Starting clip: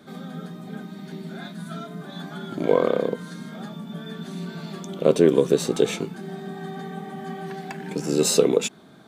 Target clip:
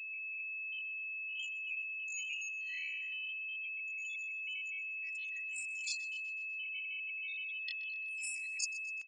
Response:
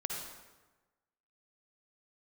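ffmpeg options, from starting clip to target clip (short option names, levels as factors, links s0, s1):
-filter_complex "[0:a]afftfilt=real='re*gte(hypot(re,im),0.0398)':imag='im*gte(hypot(re,im),0.0398)':win_size=1024:overlap=0.75,adynamicequalizer=threshold=0.002:dfrequency=3000:dqfactor=4.4:tfrequency=3000:tqfactor=4.4:attack=5:release=100:ratio=0.375:range=2:mode=cutabove:tftype=bell,asetrate=85689,aresample=44100,atempo=0.514651,areverse,acompressor=threshold=0.0316:ratio=16,areverse,aecho=1:1:1.7:0.72,aeval=exprs='val(0)+0.00891*sin(2*PI*2600*n/s)':c=same,afftfilt=real='re*between(b*sr/4096,1900,10000)':imag='im*between(b*sr/4096,1900,10000)':win_size=4096:overlap=0.75,asplit=2[s0][s1];[s1]aecho=0:1:125|250|375|500|625:0.133|0.0733|0.0403|0.0222|0.0122[s2];[s0][s2]amix=inputs=2:normalize=0"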